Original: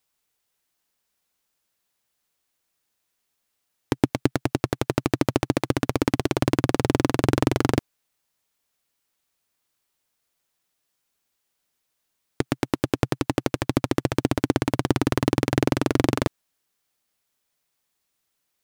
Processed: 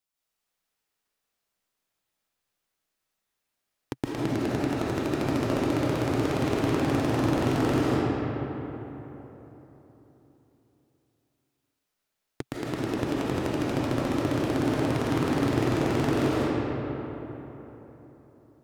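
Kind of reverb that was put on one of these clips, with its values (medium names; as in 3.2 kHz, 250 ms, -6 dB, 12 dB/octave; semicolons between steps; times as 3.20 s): algorithmic reverb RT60 3.8 s, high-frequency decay 0.5×, pre-delay 115 ms, DRR -8 dB; trim -11 dB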